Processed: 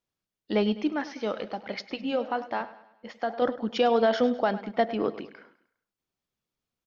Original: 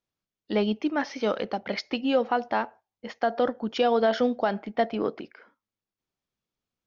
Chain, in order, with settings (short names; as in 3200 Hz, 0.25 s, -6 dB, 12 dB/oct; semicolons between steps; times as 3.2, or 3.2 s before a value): 0.92–3.42 flange 1.2 Hz, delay 2.2 ms, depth 8.2 ms, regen -84%; feedback echo 0.102 s, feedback 46%, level -16 dB